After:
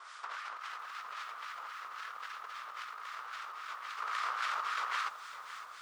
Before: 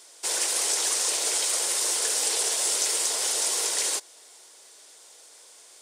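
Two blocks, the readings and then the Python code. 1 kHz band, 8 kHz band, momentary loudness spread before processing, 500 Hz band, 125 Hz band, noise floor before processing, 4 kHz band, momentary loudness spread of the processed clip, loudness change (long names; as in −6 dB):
+1.5 dB, −34.5 dB, 3 LU, −21.0 dB, can't be measured, −52 dBFS, −18.5 dB, 10 LU, −16.5 dB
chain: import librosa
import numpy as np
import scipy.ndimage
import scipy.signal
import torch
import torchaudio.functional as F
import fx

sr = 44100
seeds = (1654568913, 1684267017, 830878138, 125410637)

y = fx.tracing_dist(x, sr, depth_ms=0.23)
y = y + 10.0 ** (-8.0 / 20.0) * np.pad(y, (int(1095 * sr / 1000.0), 0))[:len(y)]
y = fx.vibrato(y, sr, rate_hz=0.53, depth_cents=11.0)
y = fx.ladder_bandpass(y, sr, hz=1300.0, resonance_pct=80)
y = fx.over_compress(y, sr, threshold_db=-52.0, ratio=-1.0)
y = fx.harmonic_tremolo(y, sr, hz=3.7, depth_pct=70, crossover_hz=1200.0)
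y = fx.echo_crushed(y, sr, ms=557, feedback_pct=35, bits=11, wet_db=-13.5)
y = F.gain(torch.from_numpy(y), 13.5).numpy()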